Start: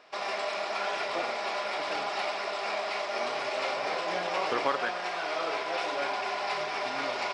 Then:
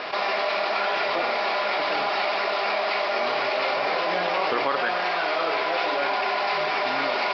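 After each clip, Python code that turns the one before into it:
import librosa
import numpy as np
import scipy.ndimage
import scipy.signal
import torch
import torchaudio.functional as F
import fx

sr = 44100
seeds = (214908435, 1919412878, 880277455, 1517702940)

y = scipy.signal.sosfilt(scipy.signal.ellip(4, 1.0, 70, 4800.0, 'lowpass', fs=sr, output='sos'), x)
y = fx.hum_notches(y, sr, base_hz=60, count=2)
y = fx.env_flatten(y, sr, amount_pct=70)
y = y * librosa.db_to_amplitude(2.5)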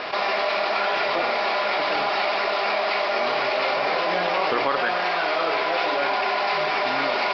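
y = fx.low_shelf(x, sr, hz=65.0, db=11.0)
y = y * librosa.db_to_amplitude(1.5)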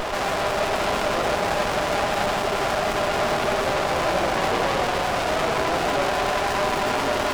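y = 10.0 ** (-26.0 / 20.0) * np.tanh(x / 10.0 ** (-26.0 / 20.0))
y = fx.echo_bbd(y, sr, ms=87, stages=2048, feedback_pct=80, wet_db=-10.0)
y = fx.running_max(y, sr, window=17)
y = y * librosa.db_to_amplitude(8.0)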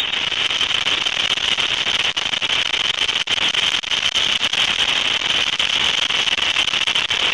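y = fx.freq_invert(x, sr, carrier_hz=3700)
y = fx.echo_wet_lowpass(y, sr, ms=283, feedback_pct=76, hz=2900.0, wet_db=-6.5)
y = fx.transformer_sat(y, sr, knee_hz=2900.0)
y = y * librosa.db_to_amplitude(7.0)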